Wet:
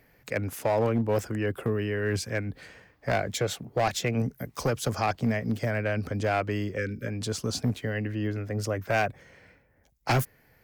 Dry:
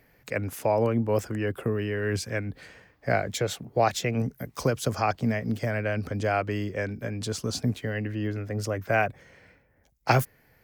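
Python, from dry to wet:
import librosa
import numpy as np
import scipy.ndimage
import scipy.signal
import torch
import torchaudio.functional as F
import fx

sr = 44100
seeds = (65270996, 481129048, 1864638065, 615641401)

y = np.clip(10.0 ** (19.0 / 20.0) * x, -1.0, 1.0) / 10.0 ** (19.0 / 20.0)
y = fx.spec_erase(y, sr, start_s=6.77, length_s=0.3, low_hz=560.0, high_hz=1200.0)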